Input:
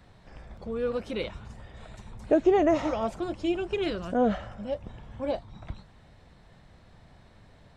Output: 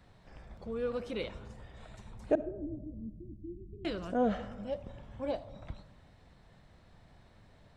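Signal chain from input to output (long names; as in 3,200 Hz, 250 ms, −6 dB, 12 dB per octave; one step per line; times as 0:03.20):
0:02.35–0:03.85: inverse Chebyshev low-pass filter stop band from 650 Hz, stop band 50 dB
on a send: convolution reverb RT60 1.2 s, pre-delay 20 ms, DRR 16 dB
on the sum: level −5 dB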